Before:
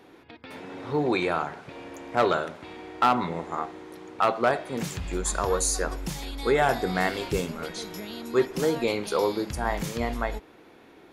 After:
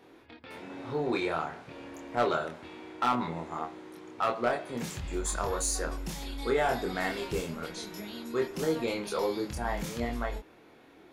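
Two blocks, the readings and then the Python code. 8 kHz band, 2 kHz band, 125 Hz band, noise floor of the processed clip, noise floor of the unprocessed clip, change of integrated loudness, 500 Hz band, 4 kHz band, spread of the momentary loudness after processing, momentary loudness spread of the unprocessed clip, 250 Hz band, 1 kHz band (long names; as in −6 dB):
−4.5 dB, −5.0 dB, −5.0 dB, −56 dBFS, −53 dBFS, −5.0 dB, −5.0 dB, −4.5 dB, 15 LU, 17 LU, −4.5 dB, −5.5 dB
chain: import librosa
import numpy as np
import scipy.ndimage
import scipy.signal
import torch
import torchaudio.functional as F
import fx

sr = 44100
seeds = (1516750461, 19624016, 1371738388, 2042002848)

p1 = 10.0 ** (-25.0 / 20.0) * np.tanh(x / 10.0 ** (-25.0 / 20.0))
p2 = x + F.gain(torch.from_numpy(p1), -5.5).numpy()
p3 = fx.doubler(p2, sr, ms=25.0, db=-3.0)
y = F.gain(torch.from_numpy(p3), -9.0).numpy()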